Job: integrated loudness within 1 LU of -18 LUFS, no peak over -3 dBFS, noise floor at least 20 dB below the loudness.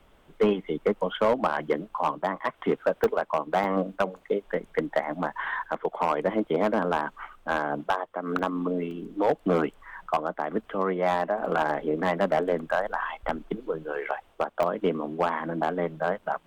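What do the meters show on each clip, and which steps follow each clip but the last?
clipped samples 0.8%; clipping level -15.5 dBFS; dropouts 5; longest dropout 1.1 ms; loudness -28.0 LUFS; peak level -15.5 dBFS; loudness target -18.0 LUFS
-> clip repair -15.5 dBFS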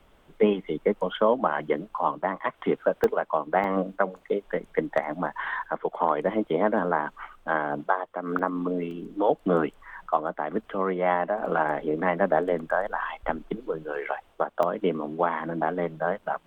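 clipped samples 0.0%; dropouts 5; longest dropout 1.1 ms
-> interpolate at 3.04/3.64/8.39/8.91/14.63 s, 1.1 ms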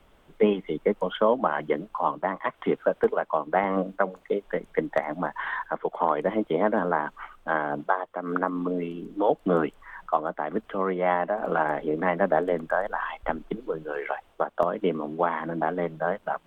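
dropouts 0; loudness -27.5 LUFS; peak level -7.5 dBFS; loudness target -18.0 LUFS
-> trim +9.5 dB; peak limiter -3 dBFS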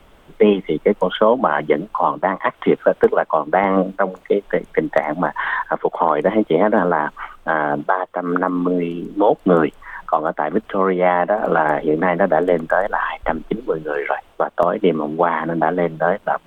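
loudness -18.5 LUFS; peak level -3.0 dBFS; noise floor -50 dBFS

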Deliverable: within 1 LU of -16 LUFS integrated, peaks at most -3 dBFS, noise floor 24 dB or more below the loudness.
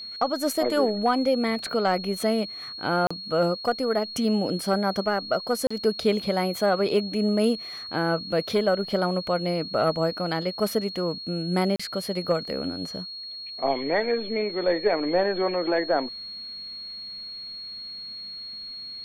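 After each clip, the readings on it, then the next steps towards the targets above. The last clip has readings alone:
dropouts 3; longest dropout 35 ms; steady tone 4.3 kHz; tone level -35 dBFS; loudness -26.0 LUFS; peak level -10.5 dBFS; loudness target -16.0 LUFS
-> interpolate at 3.07/5.67/11.76 s, 35 ms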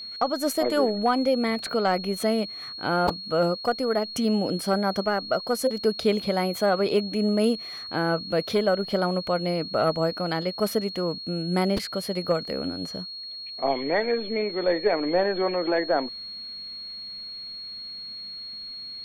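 dropouts 0; steady tone 4.3 kHz; tone level -35 dBFS
-> band-stop 4.3 kHz, Q 30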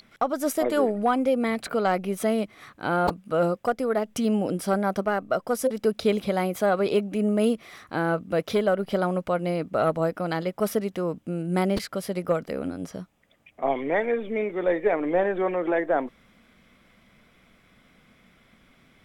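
steady tone not found; loudness -26.0 LUFS; peak level -11.0 dBFS; loudness target -16.0 LUFS
-> trim +10 dB; peak limiter -3 dBFS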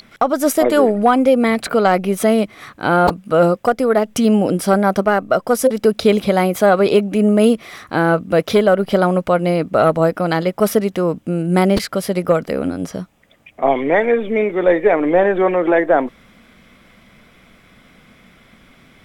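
loudness -16.0 LUFS; peak level -3.0 dBFS; noise floor -50 dBFS

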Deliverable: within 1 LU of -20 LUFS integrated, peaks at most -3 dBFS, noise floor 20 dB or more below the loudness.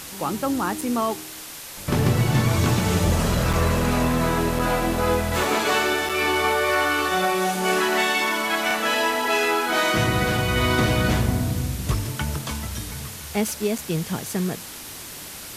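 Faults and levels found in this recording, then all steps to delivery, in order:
dropouts 5; longest dropout 4.7 ms; noise floor -37 dBFS; noise floor target -42 dBFS; loudness -22.0 LUFS; peak level -8.0 dBFS; loudness target -20.0 LUFS
-> interpolate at 0.81/3.53/4.59/6.09/13.78 s, 4.7 ms; noise print and reduce 6 dB; trim +2 dB

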